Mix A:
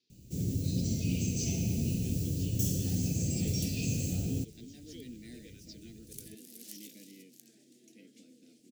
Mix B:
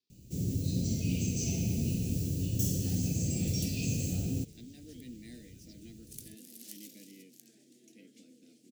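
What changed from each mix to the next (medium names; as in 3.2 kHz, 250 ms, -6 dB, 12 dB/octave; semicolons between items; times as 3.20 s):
speech -9.5 dB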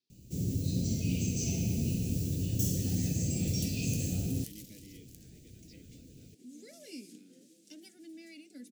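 second sound: entry -2.25 s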